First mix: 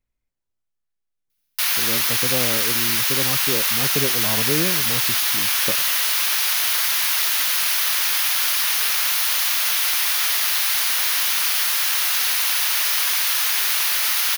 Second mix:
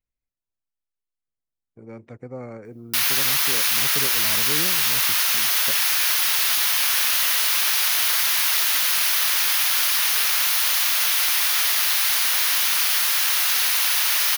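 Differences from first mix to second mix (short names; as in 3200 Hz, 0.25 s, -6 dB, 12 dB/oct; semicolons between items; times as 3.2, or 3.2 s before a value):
speech -8.5 dB; background: entry +1.35 s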